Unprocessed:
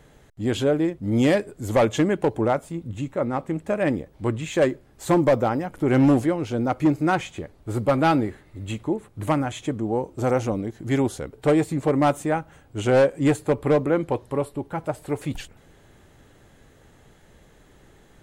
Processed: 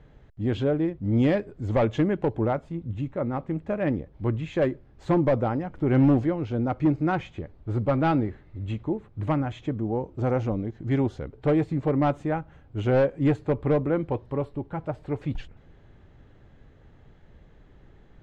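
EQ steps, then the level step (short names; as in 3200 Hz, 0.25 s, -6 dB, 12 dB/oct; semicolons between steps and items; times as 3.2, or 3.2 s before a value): air absorption 200 m; low shelf 160 Hz +9 dB; -4.5 dB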